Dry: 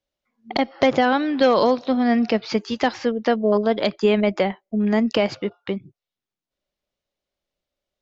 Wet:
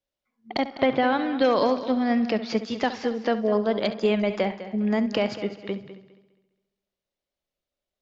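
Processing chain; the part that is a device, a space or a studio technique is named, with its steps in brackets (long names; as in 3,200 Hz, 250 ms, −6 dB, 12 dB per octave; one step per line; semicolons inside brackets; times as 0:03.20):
0:00.75–0:01.43: low-pass filter 3,500 Hz → 5,100 Hz 24 dB per octave
multi-head tape echo (echo machine with several playback heads 68 ms, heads first and third, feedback 43%, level −14 dB; tape wow and flutter 22 cents)
level −4.5 dB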